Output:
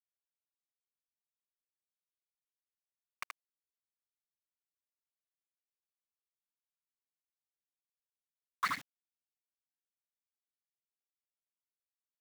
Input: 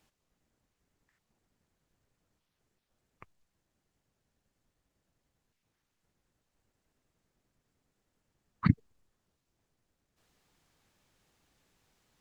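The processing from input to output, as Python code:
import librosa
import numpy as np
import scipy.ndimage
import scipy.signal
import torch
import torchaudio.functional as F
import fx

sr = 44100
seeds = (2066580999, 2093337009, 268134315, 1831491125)

p1 = fx.over_compress(x, sr, threshold_db=-34.0, ratio=-1.0)
p2 = x + F.gain(torch.from_numpy(p1), 3.0).numpy()
p3 = np.where(np.abs(p2) >= 10.0 ** (-37.0 / 20.0), p2, 0.0)
p4 = scipy.signal.sosfilt(scipy.signal.bessel(2, 2000.0, 'highpass', norm='mag', fs=sr, output='sos'), p3)
p5 = fx.power_curve(p4, sr, exponent=0.7)
y = p5 + fx.echo_single(p5, sr, ms=77, db=-4.0, dry=0)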